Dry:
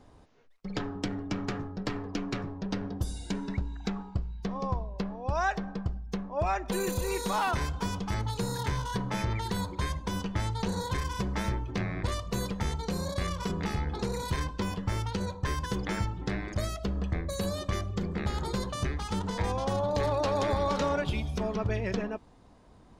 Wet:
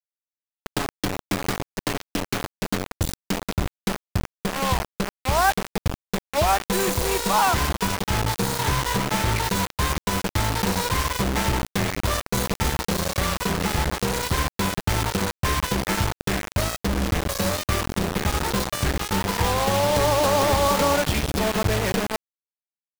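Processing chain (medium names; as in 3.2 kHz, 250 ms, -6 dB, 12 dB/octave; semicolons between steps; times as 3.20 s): dynamic bell 920 Hz, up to +4 dB, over -40 dBFS, Q 1.3; bit crusher 5-bit; trim +6 dB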